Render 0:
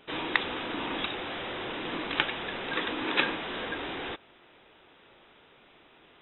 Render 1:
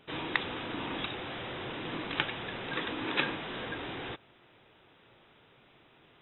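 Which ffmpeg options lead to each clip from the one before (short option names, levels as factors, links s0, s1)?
-af "equalizer=f=120:w=1.3:g=9.5,volume=0.631"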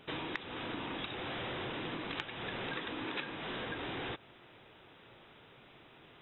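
-af "acompressor=threshold=0.01:ratio=6,volume=1.41"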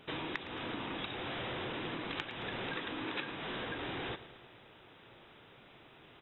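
-af "aecho=1:1:111|222|333|444|555|666:0.188|0.111|0.0656|0.0387|0.0228|0.0135"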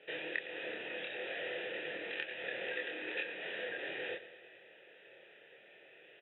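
-filter_complex "[0:a]asplit=3[s0][s1][s2];[s0]bandpass=f=530:t=q:w=8,volume=1[s3];[s1]bandpass=f=1840:t=q:w=8,volume=0.501[s4];[s2]bandpass=f=2480:t=q:w=8,volume=0.355[s5];[s3][s4][s5]amix=inputs=3:normalize=0,highpass=f=120:w=0.5412,highpass=f=120:w=1.3066,equalizer=f=140:t=q:w=4:g=-3,equalizer=f=260:t=q:w=4:g=-10,equalizer=f=540:t=q:w=4:g=-8,lowpass=f=4500:w=0.5412,lowpass=f=4500:w=1.3066,asplit=2[s6][s7];[s7]adelay=26,volume=0.75[s8];[s6][s8]amix=inputs=2:normalize=0,volume=3.55"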